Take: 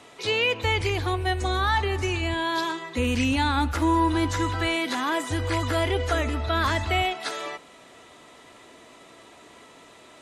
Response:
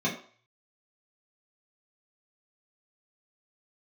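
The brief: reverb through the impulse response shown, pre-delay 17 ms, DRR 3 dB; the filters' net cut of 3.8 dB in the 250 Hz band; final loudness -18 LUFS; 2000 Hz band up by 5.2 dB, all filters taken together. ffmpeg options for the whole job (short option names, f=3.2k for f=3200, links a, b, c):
-filter_complex "[0:a]equalizer=f=250:t=o:g=-5.5,equalizer=f=2k:t=o:g=6.5,asplit=2[a][b];[1:a]atrim=start_sample=2205,adelay=17[c];[b][c]afir=irnorm=-1:irlink=0,volume=-13dB[d];[a][d]amix=inputs=2:normalize=0,volume=3.5dB"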